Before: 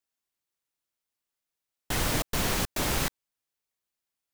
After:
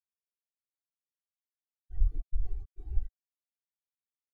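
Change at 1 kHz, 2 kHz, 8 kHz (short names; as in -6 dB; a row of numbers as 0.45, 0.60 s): -37.0 dB, under -40 dB, under -40 dB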